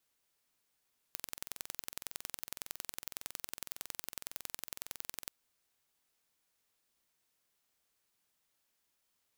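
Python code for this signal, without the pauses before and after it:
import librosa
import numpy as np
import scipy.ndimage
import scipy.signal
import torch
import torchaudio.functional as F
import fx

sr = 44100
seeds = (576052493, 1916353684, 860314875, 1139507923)

y = fx.impulse_train(sr, length_s=4.14, per_s=21.8, accent_every=2, level_db=-11.0)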